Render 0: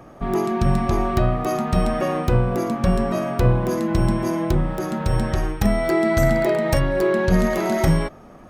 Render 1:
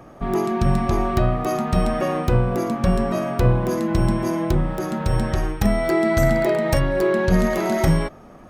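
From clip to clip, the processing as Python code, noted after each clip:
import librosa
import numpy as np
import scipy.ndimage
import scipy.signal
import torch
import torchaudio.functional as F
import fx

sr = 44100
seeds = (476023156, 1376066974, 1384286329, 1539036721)

y = x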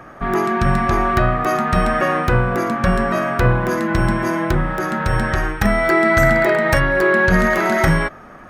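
y = fx.peak_eq(x, sr, hz=1600.0, db=13.0, octaves=1.2)
y = y * librosa.db_to_amplitude(1.0)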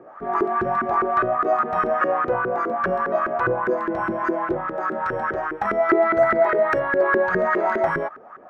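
y = fx.filter_lfo_bandpass(x, sr, shape='saw_up', hz=4.9, low_hz=350.0, high_hz=1500.0, q=3.9)
y = y * librosa.db_to_amplitude(5.0)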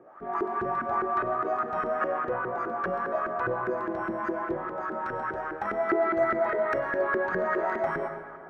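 y = fx.rev_plate(x, sr, seeds[0], rt60_s=2.1, hf_ratio=0.65, predelay_ms=85, drr_db=8.0)
y = y * librosa.db_to_amplitude(-8.0)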